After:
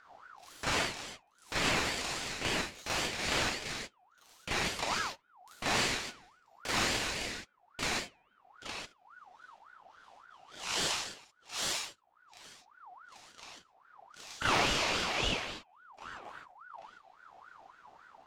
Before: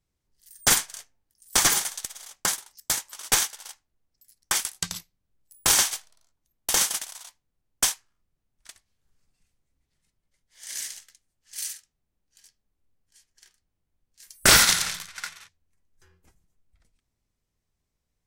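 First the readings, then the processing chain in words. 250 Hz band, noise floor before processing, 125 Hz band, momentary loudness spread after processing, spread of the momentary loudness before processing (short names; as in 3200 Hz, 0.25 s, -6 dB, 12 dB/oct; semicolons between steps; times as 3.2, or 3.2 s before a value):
0.0 dB, -81 dBFS, -2.0 dB, 21 LU, 18 LU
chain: bell 9200 Hz -15 dB 1.6 oct; de-hum 152.6 Hz, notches 16; compressor 16:1, threshold -40 dBFS, peak gain reduction 25 dB; sample leveller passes 3; upward compressor, threshold -42 dBFS; air absorption 68 m; reverse echo 35 ms -4.5 dB; non-linear reverb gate 0.17 s flat, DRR -6.5 dB; ring modulator with a swept carrier 1100 Hz, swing 35%, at 3.6 Hz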